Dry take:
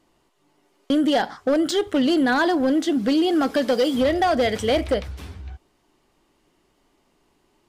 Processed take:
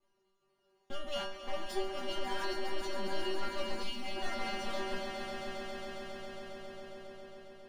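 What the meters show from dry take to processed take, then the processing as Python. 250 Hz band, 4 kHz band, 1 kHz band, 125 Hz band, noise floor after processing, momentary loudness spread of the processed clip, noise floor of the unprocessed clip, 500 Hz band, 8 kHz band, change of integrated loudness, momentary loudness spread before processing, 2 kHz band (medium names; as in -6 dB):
-24.5 dB, -11.0 dB, -14.5 dB, -16.5 dB, -76 dBFS, 11 LU, -66 dBFS, -17.0 dB, -12.5 dB, -19.0 dB, 7 LU, -13.5 dB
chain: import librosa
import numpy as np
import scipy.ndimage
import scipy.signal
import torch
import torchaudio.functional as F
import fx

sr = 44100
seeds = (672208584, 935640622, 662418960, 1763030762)

p1 = fx.lower_of_two(x, sr, delay_ms=8.4)
p2 = fx.high_shelf(p1, sr, hz=3900.0, db=-10.5)
p3 = 10.0 ** (-25.5 / 20.0) * (np.abs((p2 / 10.0 ** (-25.5 / 20.0) + 3.0) % 4.0 - 2.0) - 1.0)
p4 = p2 + (p3 * 10.0 ** (-6.0 / 20.0))
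p5 = fx.stiff_resonator(p4, sr, f0_hz=190.0, decay_s=0.59, stiffness=0.002)
p6 = fx.echo_swell(p5, sr, ms=136, loudest=5, wet_db=-9.5)
p7 = fx.dynamic_eq(p6, sr, hz=470.0, q=0.93, threshold_db=-48.0, ratio=4.0, max_db=-6)
p8 = fx.spec_box(p7, sr, start_s=3.83, length_s=0.33, low_hz=290.0, high_hz=2000.0, gain_db=-8)
p9 = fx.doubler(p8, sr, ms=13.0, db=-8)
y = p9 * 10.0 ** (3.0 / 20.0)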